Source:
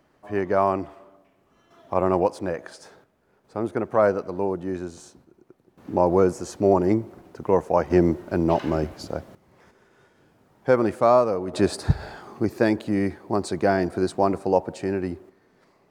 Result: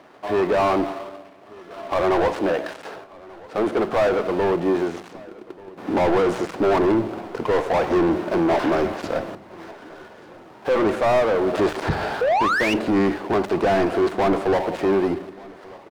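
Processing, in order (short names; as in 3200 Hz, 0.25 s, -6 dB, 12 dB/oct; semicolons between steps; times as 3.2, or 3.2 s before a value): switching dead time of 0.19 ms; painted sound rise, 12.21–12.74, 460–3000 Hz -25 dBFS; overdrive pedal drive 32 dB, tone 1400 Hz, clips at -5.5 dBFS; feedback echo 1.186 s, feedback 36%, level -23 dB; on a send at -13 dB: reverb RT60 0.50 s, pre-delay 3 ms; on the sum: gain -5.5 dB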